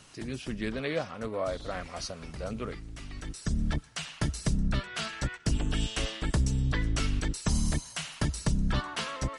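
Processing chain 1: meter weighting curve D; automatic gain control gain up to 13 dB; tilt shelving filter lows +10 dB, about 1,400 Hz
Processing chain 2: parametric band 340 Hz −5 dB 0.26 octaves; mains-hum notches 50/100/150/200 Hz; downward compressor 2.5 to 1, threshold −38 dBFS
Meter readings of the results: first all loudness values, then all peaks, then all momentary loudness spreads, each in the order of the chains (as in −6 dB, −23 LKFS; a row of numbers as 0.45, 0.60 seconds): −18.5, −40.5 LKFS; −1.5, −22.5 dBFS; 8, 4 LU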